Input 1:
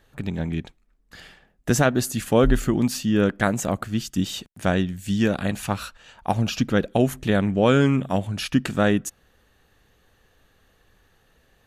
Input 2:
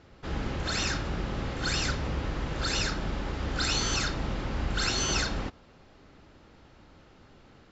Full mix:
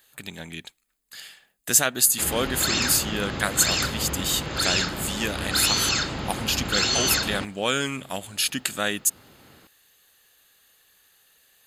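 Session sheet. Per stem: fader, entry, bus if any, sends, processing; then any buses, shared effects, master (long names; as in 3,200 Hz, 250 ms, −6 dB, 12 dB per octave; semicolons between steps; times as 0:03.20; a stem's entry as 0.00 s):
−5.5 dB, 0.00 s, no send, spectral tilt +3.5 dB per octave
+2.5 dB, 1.95 s, no send, high-pass filter 81 Hz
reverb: not used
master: high-shelf EQ 2,700 Hz +8 dB; notch filter 5,700 Hz, Q 6.2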